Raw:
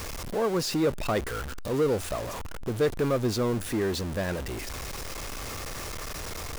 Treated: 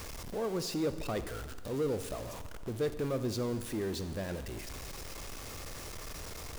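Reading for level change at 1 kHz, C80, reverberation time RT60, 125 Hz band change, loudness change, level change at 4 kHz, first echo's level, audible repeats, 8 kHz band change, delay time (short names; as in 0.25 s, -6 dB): -9.5 dB, 13.0 dB, 1.5 s, -7.0 dB, -7.5 dB, -7.5 dB, none, none, -7.0 dB, none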